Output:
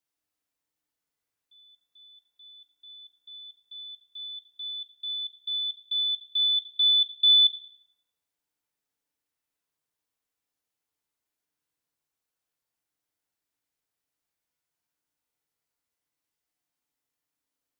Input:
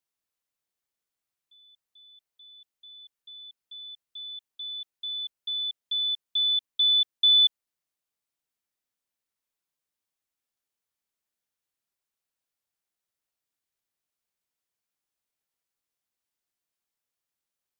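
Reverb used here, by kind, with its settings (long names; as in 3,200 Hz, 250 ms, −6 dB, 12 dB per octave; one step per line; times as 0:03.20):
feedback delay network reverb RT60 2.2 s, low-frequency decay 1.1×, high-frequency decay 0.3×, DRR 0 dB
level −1 dB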